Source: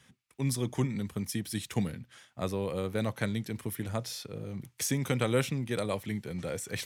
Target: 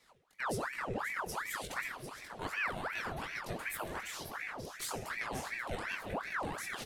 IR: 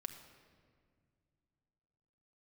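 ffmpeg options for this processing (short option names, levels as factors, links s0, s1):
-filter_complex "[0:a]asettb=1/sr,asplit=3[s0][s1][s2];[s0]atrim=end=1.504[s3];[s1]atrim=start=1.5:end=4.08,asetpts=PTS-STARTPTS,afade=t=in:d=0.004:c=qsin,afade=t=out:st=2.576:d=0.004:c=qsin,aecho=1:1:2.8:0.9,atrim=end_sample=113778[s4];[s2]atrim=start=4.076[s5];[s3][s4]acrossfade=d=0.004:c1=hsin:c2=qsin[s6];[s6][s5]acrossfade=d=0.004:c1=qsin:c2=hsin,alimiter=limit=0.0668:level=0:latency=1:release=263,flanger=delay=17:depth=6.1:speed=1.1,aecho=1:1:534:0.355[s7];[1:a]atrim=start_sample=2205[s8];[s7][s8]afir=irnorm=-1:irlink=0,aeval=exprs='val(0)*sin(2*PI*1200*n/s+1200*0.8/2.7*sin(2*PI*2.7*n/s))':c=same,volume=1.68"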